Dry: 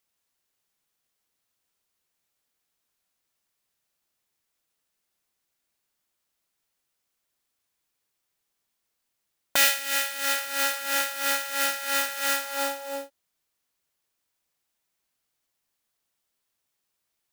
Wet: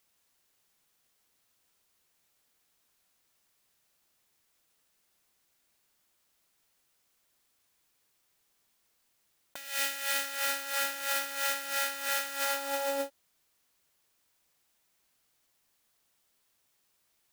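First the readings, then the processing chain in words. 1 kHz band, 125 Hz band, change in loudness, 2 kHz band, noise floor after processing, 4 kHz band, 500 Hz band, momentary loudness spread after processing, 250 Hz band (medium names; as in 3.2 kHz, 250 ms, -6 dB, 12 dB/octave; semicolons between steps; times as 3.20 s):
-5.0 dB, no reading, -6.5 dB, -6.5 dB, -74 dBFS, -6.5 dB, -3.0 dB, 6 LU, -5.5 dB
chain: compressor with a negative ratio -35 dBFS, ratio -1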